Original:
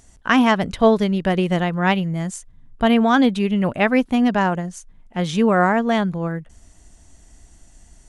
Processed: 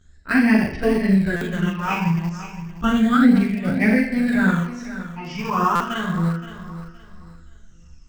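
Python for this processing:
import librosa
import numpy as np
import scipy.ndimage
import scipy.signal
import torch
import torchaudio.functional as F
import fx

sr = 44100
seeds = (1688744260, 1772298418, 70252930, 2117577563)

p1 = scipy.signal.sosfilt(scipy.signal.butter(2, 4900.0, 'lowpass', fs=sr, output='sos'), x)
p2 = fx.hum_notches(p1, sr, base_hz=50, count=4)
p3 = p2 + fx.room_flutter(p2, sr, wall_m=7.1, rt60_s=0.77, dry=0)
p4 = fx.chorus_voices(p3, sr, voices=2, hz=0.89, base_ms=13, depth_ms=1.6, mix_pct=65)
p5 = np.where(np.abs(p4) >= 10.0 ** (-18.5 / 20.0), p4, 0.0)
p6 = p4 + (p5 * librosa.db_to_amplitude(-10.0))
p7 = fx.phaser_stages(p6, sr, stages=8, low_hz=540.0, high_hz=1200.0, hz=0.33, feedback_pct=40)
p8 = fx.echo_feedback(p7, sr, ms=519, feedback_pct=29, wet_db=-13.5)
p9 = fx.formant_shift(p8, sr, semitones=-2)
y = fx.buffer_glitch(p9, sr, at_s=(1.36, 5.75), block=256, repeats=8)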